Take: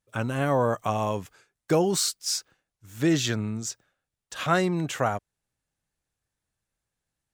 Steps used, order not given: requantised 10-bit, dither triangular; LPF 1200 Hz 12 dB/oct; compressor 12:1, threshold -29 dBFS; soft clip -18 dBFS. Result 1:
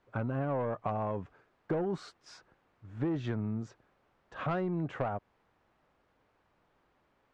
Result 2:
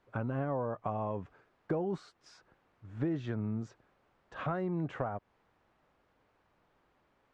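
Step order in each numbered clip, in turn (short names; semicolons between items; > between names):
requantised > LPF > soft clip > compressor; requantised > compressor > soft clip > LPF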